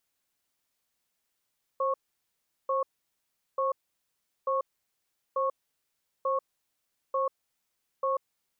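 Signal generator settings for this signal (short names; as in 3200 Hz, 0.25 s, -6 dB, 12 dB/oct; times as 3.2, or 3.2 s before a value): cadence 533 Hz, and 1100 Hz, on 0.14 s, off 0.75 s, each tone -27.5 dBFS 6.44 s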